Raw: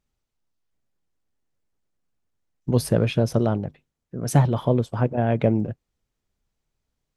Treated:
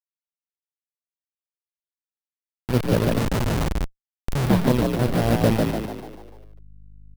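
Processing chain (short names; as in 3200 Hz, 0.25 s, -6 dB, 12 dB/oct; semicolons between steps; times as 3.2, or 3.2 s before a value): level-crossing sampler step -19 dBFS; bell 7000 Hz -6 dB 0.65 oct; frequency-shifting echo 0.147 s, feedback 48%, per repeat +51 Hz, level -3 dB; 3.18–4.45 Schmitt trigger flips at -23 dBFS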